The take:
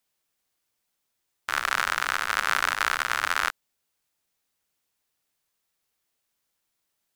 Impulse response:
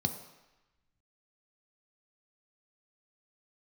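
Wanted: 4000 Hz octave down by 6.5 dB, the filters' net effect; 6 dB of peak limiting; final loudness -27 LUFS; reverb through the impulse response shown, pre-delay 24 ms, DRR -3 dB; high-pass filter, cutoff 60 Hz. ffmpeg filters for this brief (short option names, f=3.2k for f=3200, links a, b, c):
-filter_complex "[0:a]highpass=60,equalizer=f=4k:t=o:g=-9,alimiter=limit=-13.5dB:level=0:latency=1,asplit=2[a][b];[1:a]atrim=start_sample=2205,adelay=24[c];[b][c]afir=irnorm=-1:irlink=0,volume=-1dB[d];[a][d]amix=inputs=2:normalize=0,volume=0.5dB"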